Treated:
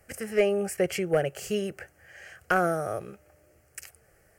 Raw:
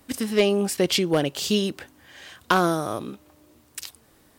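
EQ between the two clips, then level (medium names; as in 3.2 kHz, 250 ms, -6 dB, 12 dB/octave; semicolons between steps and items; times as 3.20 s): treble shelf 11 kHz -9.5 dB; dynamic bell 4.9 kHz, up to -7 dB, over -44 dBFS, Q 1.4; static phaser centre 1 kHz, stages 6; 0.0 dB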